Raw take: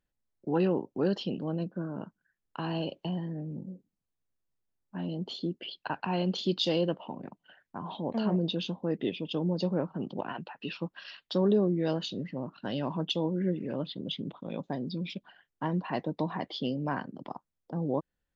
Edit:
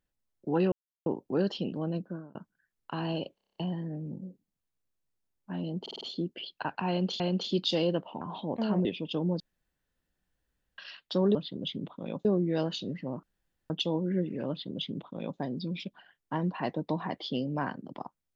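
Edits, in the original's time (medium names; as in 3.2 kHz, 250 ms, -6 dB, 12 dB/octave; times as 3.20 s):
0.72 s: insert silence 0.34 s
1.70–2.01 s: fade out
3.01 s: stutter 0.03 s, 8 plays
5.26 s: stutter 0.05 s, 5 plays
6.14–6.45 s: loop, 2 plays
7.15–7.77 s: delete
8.41–9.05 s: delete
9.60–10.98 s: room tone
12.53–13.00 s: room tone
13.79–14.69 s: copy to 11.55 s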